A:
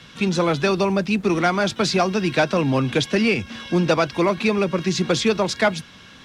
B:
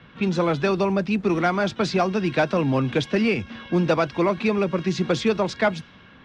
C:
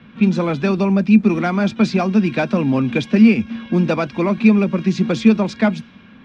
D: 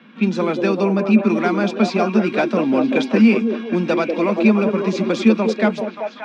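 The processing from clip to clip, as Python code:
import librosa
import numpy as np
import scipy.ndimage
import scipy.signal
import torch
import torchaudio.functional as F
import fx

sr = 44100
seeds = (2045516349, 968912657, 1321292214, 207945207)

y1 = fx.high_shelf(x, sr, hz=4100.0, db=-10.5)
y1 = fx.env_lowpass(y1, sr, base_hz=2400.0, full_db=-14.5)
y1 = y1 * 10.0 ** (-1.5 / 20.0)
y2 = fx.small_body(y1, sr, hz=(220.0, 2400.0), ring_ms=65, db=14)
y3 = scipy.signal.sosfilt(scipy.signal.butter(4, 210.0, 'highpass', fs=sr, output='sos'), y2)
y3 = fx.echo_stepped(y3, sr, ms=193, hz=390.0, octaves=0.7, feedback_pct=70, wet_db=-0.5)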